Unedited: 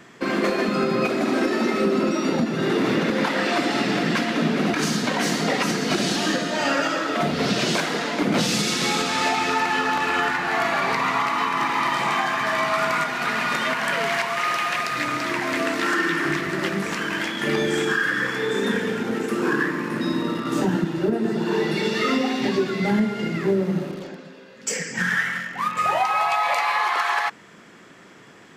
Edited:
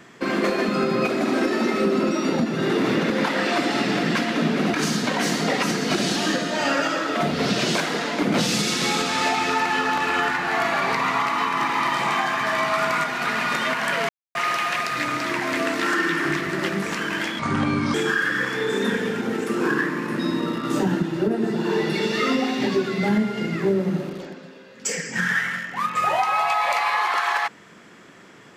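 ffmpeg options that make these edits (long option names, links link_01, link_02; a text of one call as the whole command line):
ffmpeg -i in.wav -filter_complex "[0:a]asplit=5[link_01][link_02][link_03][link_04][link_05];[link_01]atrim=end=14.09,asetpts=PTS-STARTPTS,afade=type=out:start_time=14.086:duration=0.004:curve=hsin[link_06];[link_02]atrim=start=14.09:end=14.35,asetpts=PTS-STARTPTS,volume=0[link_07];[link_03]atrim=start=14.35:end=17.394,asetpts=PTS-STARTPTS,afade=type=in:duration=0.004:curve=hsin[link_08];[link_04]atrim=start=17.39:end=17.76,asetpts=PTS-STARTPTS,asetrate=29547,aresample=44100[link_09];[link_05]atrim=start=17.756[link_10];[link_06][link_07][link_08]concat=n=3:v=0:a=1[link_11];[link_11][link_09]acrossfade=duration=0.004:curve1=hsin:curve2=hsin[link_12];[link_12][link_10]acrossfade=duration=0.004:curve1=hsin:curve2=hsin" out.wav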